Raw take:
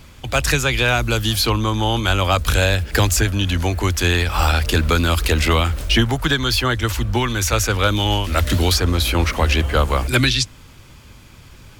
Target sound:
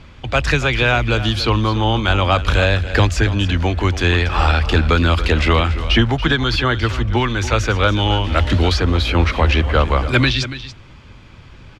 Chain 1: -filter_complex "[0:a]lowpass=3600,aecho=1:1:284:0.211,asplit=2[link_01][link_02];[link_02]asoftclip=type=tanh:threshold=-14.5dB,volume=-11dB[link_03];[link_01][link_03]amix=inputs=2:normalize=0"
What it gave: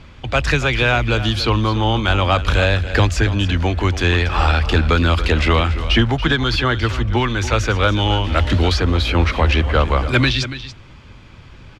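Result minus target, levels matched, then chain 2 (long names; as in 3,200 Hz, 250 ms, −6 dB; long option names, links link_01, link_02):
soft clipping: distortion +16 dB
-filter_complex "[0:a]lowpass=3600,aecho=1:1:284:0.211,asplit=2[link_01][link_02];[link_02]asoftclip=type=tanh:threshold=-3.5dB,volume=-11dB[link_03];[link_01][link_03]amix=inputs=2:normalize=0"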